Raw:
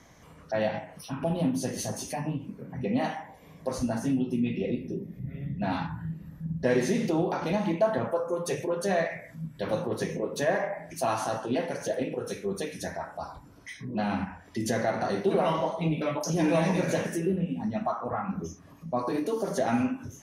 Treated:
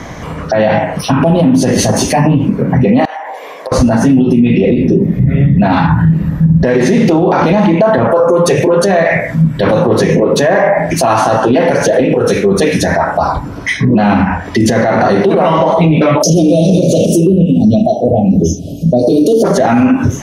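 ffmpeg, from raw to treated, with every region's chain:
ffmpeg -i in.wav -filter_complex "[0:a]asettb=1/sr,asplit=3[link_01][link_02][link_03];[link_01]atrim=end=3.054[link_04];[link_02]atrim=start=3.05:end=3.72,asetpts=PTS-STARTPTS,afade=type=in:duration=0.004:curve=qsin,afade=type=out:start_time=0.666:duration=0.004:curve=qsin,highpass=frequency=460:width=0.5412,highpass=frequency=460:width=1.3066,acompressor=threshold=-48dB:ratio=10:attack=3.2:release=140:knee=1:detection=peak,aeval=exprs='(mod(70.8*val(0)+1,2)-1)/70.8':channel_layout=same[link_05];[link_03]atrim=start=3.716[link_06];[link_04][link_05]acrossfade=duration=0.004:curve1=hsin:curve2=qsin[link_07];[link_07][link_06]acrossfade=duration=0.004:curve1=qsin:curve2=hsin,asettb=1/sr,asplit=3[link_08][link_09][link_10];[link_08]atrim=end=16.224[link_11];[link_09]atrim=start=16.22:end=19.44,asetpts=PTS-STARTPTS,afade=type=in:duration=0.004:curve=qsin,afade=type=out:start_time=3.216:duration=0.004:curve=qsin,asuperstop=centerf=1400:order=12:qfactor=0.61,highshelf=frequency=4900:gain=7[link_12];[link_10]atrim=start=19.436[link_13];[link_11][link_12]acrossfade=duration=0.004:curve1=hsin:curve2=qsin[link_14];[link_14][link_13]acrossfade=duration=0.004:curve1=qsin:curve2=hsin,lowpass=frequency=2600:poles=1,acompressor=threshold=-28dB:ratio=6,alimiter=level_in=30.5dB:limit=-1dB:release=50:level=0:latency=1,volume=-1dB" out.wav

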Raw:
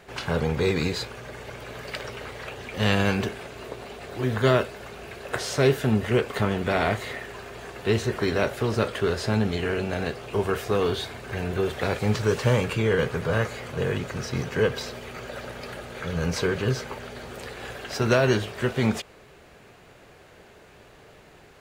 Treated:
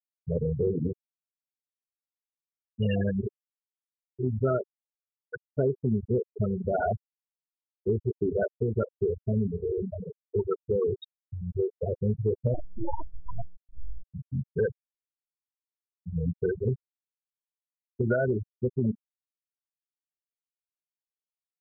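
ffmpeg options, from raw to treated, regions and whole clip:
ffmpeg -i in.wav -filter_complex "[0:a]asettb=1/sr,asplit=3[link_01][link_02][link_03];[link_01]atrim=end=12.544[link_04];[link_02]atrim=start=12.54:end=14.03,asetpts=PTS-STARTPTS,afade=type=in:duration=0.004:curve=qsin,afade=type=out:start_time=1.486:duration=0.004:curve=qsin,highpass=frequency=46:width=0.5412,highpass=frequency=46:width=1.3066,bandreject=frequency=60:width_type=h:width=6,bandreject=frequency=120:width_type=h:width=6,bandreject=frequency=180:width_type=h:width=6,aeval=exprs='abs(val(0))':channel_layout=same[link_05];[link_03]atrim=start=14.026[link_06];[link_04][link_05]acrossfade=duration=0.004:curve1=hsin:curve2=qsin[link_07];[link_07][link_06]acrossfade=duration=0.004:curve1=qsin:curve2=hsin,afftfilt=real='re*gte(hypot(re,im),0.251)':imag='im*gte(hypot(re,im),0.251)':win_size=1024:overlap=0.75,adynamicequalizer=threshold=0.0112:dfrequency=1200:dqfactor=0.98:tfrequency=1200:tqfactor=0.98:attack=5:release=100:ratio=0.375:range=2.5:mode=boostabove:tftype=bell,acompressor=threshold=-22dB:ratio=6" out.wav

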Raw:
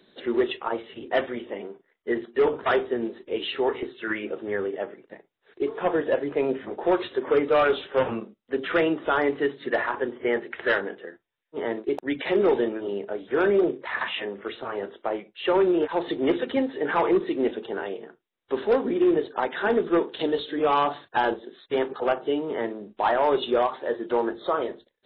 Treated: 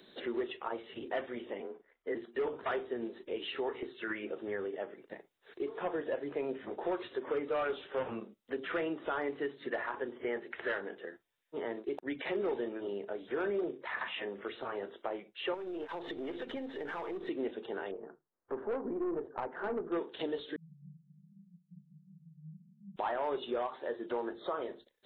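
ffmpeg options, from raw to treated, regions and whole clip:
ffmpeg -i in.wav -filter_complex "[0:a]asettb=1/sr,asplit=3[link_01][link_02][link_03];[link_01]atrim=end=1.604[link_04];[link_02]atrim=start=1.6:end=2.15,asetpts=PTS-STARTPTS,afade=type=in:duration=0.004:curve=qsin,afade=type=out:start_time=0.546:duration=0.004:curve=qsin,lowpass=2500,afreqshift=30[link_05];[link_03]atrim=start=2.146[link_06];[link_04][link_05]acrossfade=duration=0.004:curve1=hsin:curve2=qsin[link_07];[link_07][link_06]acrossfade=duration=0.004:curve1=qsin:curve2=hsin,asettb=1/sr,asplit=3[link_08][link_09][link_10];[link_08]atrim=end=15.544[link_11];[link_09]atrim=start=15.54:end=17.28,asetpts=PTS-STARTPTS,afade=type=in:duration=0.004:curve=qsin,afade=type=out:start_time=1.736:duration=0.004:curve=qsin,aeval=exprs='if(lt(val(0),0),0.708*val(0),val(0))':channel_layout=same,acompressor=threshold=-30dB:ratio=4:attack=3.2:release=140:knee=1:detection=peak[link_12];[link_10]atrim=start=17.276[link_13];[link_11][link_12]acrossfade=duration=0.004:curve1=hsin:curve2=qsin[link_14];[link_14][link_13]acrossfade=duration=0.004:curve1=qsin:curve2=hsin,asettb=1/sr,asplit=3[link_15][link_16][link_17];[link_15]atrim=end=17.914[link_18];[link_16]atrim=start=17.91:end=19.92,asetpts=PTS-STARTPTS,afade=type=in:duration=0.004:curve=qsin,afade=type=out:start_time=2.006:duration=0.004:curve=qsin,lowpass=frequency=1400:width=0.5412,lowpass=frequency=1400:width=1.3066,bandreject=frequency=50:width_type=h:width=6,bandreject=frequency=100:width_type=h:width=6,bandreject=frequency=150:width_type=h:width=6,aeval=exprs='(tanh(7.94*val(0)+0.25)-tanh(0.25))/7.94':channel_layout=same[link_19];[link_17]atrim=start=19.916[link_20];[link_18][link_19]acrossfade=duration=0.004:curve1=hsin:curve2=qsin[link_21];[link_21][link_20]acrossfade=duration=0.004:curve1=qsin:curve2=hsin,asettb=1/sr,asplit=3[link_22][link_23][link_24];[link_22]atrim=end=20.564[link_25];[link_23]atrim=start=20.56:end=22.96,asetpts=PTS-STARTPTS,afade=type=in:duration=0.004:curve=qsin,afade=type=out:start_time=2.396:duration=0.004:curve=qsin,aeval=exprs='val(0)+0.5*0.0211*sgn(val(0))':channel_layout=same,asuperpass=centerf=170:order=12:qfactor=3.5[link_26];[link_24]atrim=start=22.956[link_27];[link_25][link_26]acrossfade=duration=0.004:curve1=hsin:curve2=qsin[link_28];[link_28][link_27]acrossfade=duration=0.004:curve1=qsin:curve2=hsin,acrossover=split=3400[link_29][link_30];[link_30]acompressor=threshold=-58dB:ratio=4:attack=1:release=60[link_31];[link_29][link_31]amix=inputs=2:normalize=0,bass=frequency=250:gain=-2,treble=frequency=4000:gain=5,acompressor=threshold=-42dB:ratio=2" out.wav

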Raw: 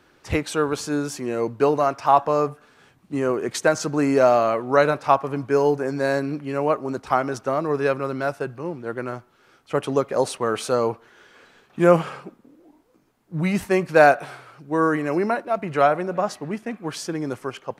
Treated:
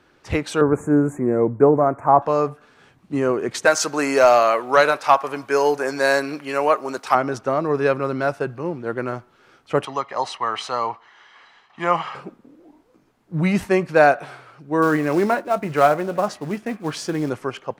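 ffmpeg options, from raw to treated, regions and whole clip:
ffmpeg -i in.wav -filter_complex "[0:a]asettb=1/sr,asplit=3[link_01][link_02][link_03];[link_01]atrim=end=0.614[link_04];[link_02]atrim=start=0.61:end=2.22,asetpts=PTS-STARTPTS,afade=type=in:duration=0.004:curve=qsin,afade=type=out:start_time=1.606:duration=0.004:curve=qsin,asuperstop=centerf=4000:order=12:qfactor=0.86,tiltshelf=frequency=870:gain=6.5[link_05];[link_03]atrim=start=2.216[link_06];[link_04][link_05]acrossfade=duration=0.004:curve1=hsin:curve2=qsin[link_07];[link_07][link_06]acrossfade=duration=0.004:curve1=qsin:curve2=hsin,asettb=1/sr,asplit=3[link_08][link_09][link_10];[link_08]atrim=end=3.654[link_11];[link_09]atrim=start=3.65:end=7.15,asetpts=PTS-STARTPTS,afade=type=in:duration=0.004:curve=qsin,afade=type=out:start_time=3.496:duration=0.004:curve=qsin,aemphasis=mode=production:type=bsi,asplit=2[link_12][link_13];[link_13]highpass=frequency=720:poles=1,volume=9dB,asoftclip=type=tanh:threshold=-3dB[link_14];[link_12][link_14]amix=inputs=2:normalize=0,lowpass=frequency=5700:poles=1,volume=-6dB[link_15];[link_10]atrim=start=7.146[link_16];[link_11][link_15]acrossfade=duration=0.004:curve1=hsin:curve2=qsin[link_17];[link_17][link_16]acrossfade=duration=0.004:curve1=qsin:curve2=hsin,asettb=1/sr,asplit=3[link_18][link_19][link_20];[link_18]atrim=end=9.854[link_21];[link_19]atrim=start=9.85:end=12.15,asetpts=PTS-STARTPTS,afade=type=in:duration=0.004:curve=qsin,afade=type=out:start_time=2.296:duration=0.004:curve=qsin,acrossover=split=560 6000:gain=0.141 1 0.141[link_22][link_23][link_24];[link_22][link_23][link_24]amix=inputs=3:normalize=0,aecho=1:1:1:0.55,atrim=end_sample=101430[link_25];[link_20]atrim=start=12.146[link_26];[link_21][link_25]acrossfade=duration=0.004:curve1=hsin:curve2=qsin[link_27];[link_27][link_26]acrossfade=duration=0.004:curve1=qsin:curve2=hsin,asettb=1/sr,asplit=3[link_28][link_29][link_30];[link_28]atrim=end=14.824[link_31];[link_29]atrim=start=14.82:end=17.3,asetpts=PTS-STARTPTS,afade=type=in:duration=0.004:curve=qsin,afade=type=out:start_time=2.476:duration=0.004:curve=qsin,acrusher=bits=5:mode=log:mix=0:aa=0.000001,asplit=2[link_32][link_33];[link_33]adelay=20,volume=-14dB[link_34];[link_32][link_34]amix=inputs=2:normalize=0,atrim=end_sample=109368[link_35];[link_30]atrim=start=17.296[link_36];[link_31][link_35]acrossfade=duration=0.004:curve1=hsin:curve2=qsin[link_37];[link_37][link_36]acrossfade=duration=0.004:curve1=qsin:curve2=hsin,highshelf=frequency=9100:gain=-9,dynaudnorm=framelen=310:gausssize=3:maxgain=3.5dB" out.wav

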